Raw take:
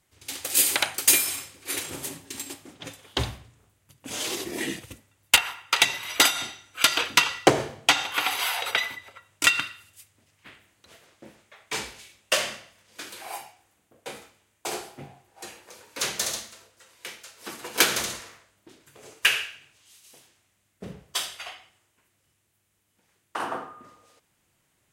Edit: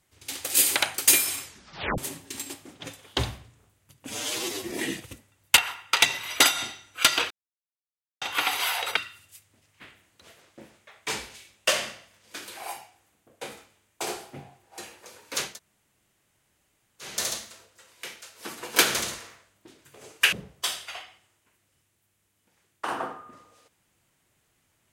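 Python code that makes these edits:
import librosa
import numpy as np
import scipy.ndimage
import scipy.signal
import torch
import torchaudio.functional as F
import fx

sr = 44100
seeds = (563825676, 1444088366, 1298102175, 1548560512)

y = fx.edit(x, sr, fx.tape_stop(start_s=1.44, length_s=0.54),
    fx.stretch_span(start_s=4.09, length_s=0.41, factor=1.5),
    fx.silence(start_s=7.1, length_s=0.91),
    fx.cut(start_s=8.76, length_s=0.85),
    fx.insert_room_tone(at_s=16.12, length_s=1.63, crossfade_s=0.24),
    fx.cut(start_s=19.34, length_s=1.5), tone=tone)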